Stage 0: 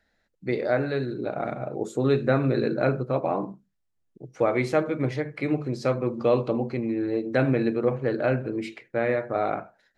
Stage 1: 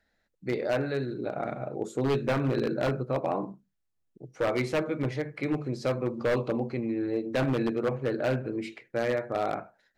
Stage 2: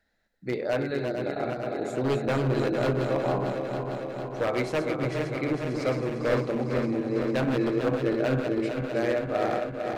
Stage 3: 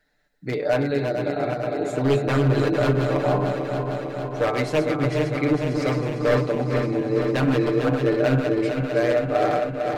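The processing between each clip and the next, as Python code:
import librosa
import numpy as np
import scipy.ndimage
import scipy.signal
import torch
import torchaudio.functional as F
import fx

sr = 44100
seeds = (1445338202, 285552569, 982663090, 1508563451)

y1 = 10.0 ** (-16.5 / 20.0) * (np.abs((x / 10.0 ** (-16.5 / 20.0) + 3.0) % 4.0 - 2.0) - 1.0)
y1 = y1 * librosa.db_to_amplitude(-3.0)
y2 = fx.reverse_delay_fb(y1, sr, ms=226, feedback_pct=83, wet_db=-6)
y3 = y2 + 0.65 * np.pad(y2, (int(6.8 * sr / 1000.0), 0))[:len(y2)]
y3 = y3 * librosa.db_to_amplitude(3.5)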